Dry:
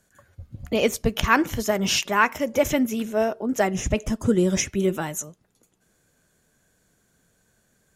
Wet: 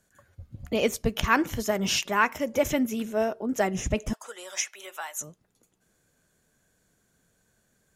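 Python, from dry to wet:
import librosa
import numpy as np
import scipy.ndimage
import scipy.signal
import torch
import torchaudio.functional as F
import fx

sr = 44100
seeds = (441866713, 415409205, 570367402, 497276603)

y = fx.highpass(x, sr, hz=740.0, slope=24, at=(4.13, 5.21))
y = y * 10.0 ** (-3.5 / 20.0)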